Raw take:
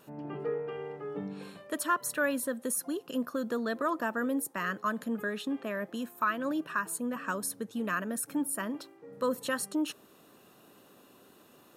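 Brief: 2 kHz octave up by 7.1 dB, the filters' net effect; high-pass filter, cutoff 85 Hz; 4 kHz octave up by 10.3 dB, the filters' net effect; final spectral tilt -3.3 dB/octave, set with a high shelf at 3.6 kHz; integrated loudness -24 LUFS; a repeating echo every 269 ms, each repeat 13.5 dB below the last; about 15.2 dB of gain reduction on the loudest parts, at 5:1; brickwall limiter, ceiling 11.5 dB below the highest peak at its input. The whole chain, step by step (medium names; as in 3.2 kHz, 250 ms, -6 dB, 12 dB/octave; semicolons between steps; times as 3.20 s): high-pass 85 Hz; peaking EQ 2 kHz +6.5 dB; treble shelf 3.6 kHz +8 dB; peaking EQ 4 kHz +6 dB; compression 5:1, threshold -38 dBFS; peak limiter -32.5 dBFS; feedback delay 269 ms, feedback 21%, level -13.5 dB; trim +18.5 dB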